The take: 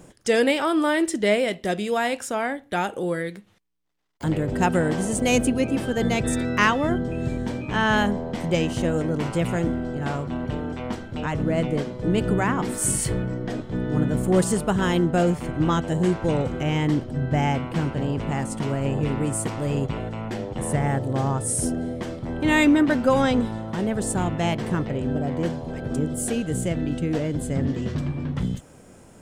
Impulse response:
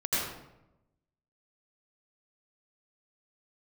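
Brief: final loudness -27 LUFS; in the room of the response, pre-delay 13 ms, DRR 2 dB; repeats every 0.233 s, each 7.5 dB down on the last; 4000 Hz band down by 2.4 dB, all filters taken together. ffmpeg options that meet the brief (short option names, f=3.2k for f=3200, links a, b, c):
-filter_complex "[0:a]equalizer=f=4k:t=o:g=-3.5,aecho=1:1:233|466|699|932|1165:0.422|0.177|0.0744|0.0312|0.0131,asplit=2[a][b];[1:a]atrim=start_sample=2205,adelay=13[c];[b][c]afir=irnorm=-1:irlink=0,volume=-11.5dB[d];[a][d]amix=inputs=2:normalize=0,volume=-6dB"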